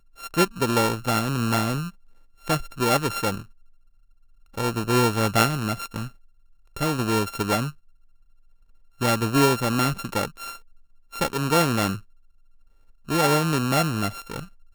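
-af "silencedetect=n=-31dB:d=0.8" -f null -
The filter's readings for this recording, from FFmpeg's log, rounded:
silence_start: 3.40
silence_end: 4.57 | silence_duration: 1.17
silence_start: 7.70
silence_end: 9.01 | silence_duration: 1.31
silence_start: 11.97
silence_end: 13.09 | silence_duration: 1.12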